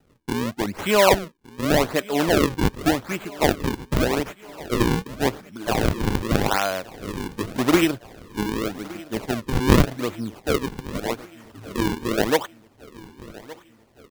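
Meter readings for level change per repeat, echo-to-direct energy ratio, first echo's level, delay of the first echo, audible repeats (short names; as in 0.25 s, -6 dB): -4.5 dB, -18.0 dB, -20.0 dB, 1.166 s, 4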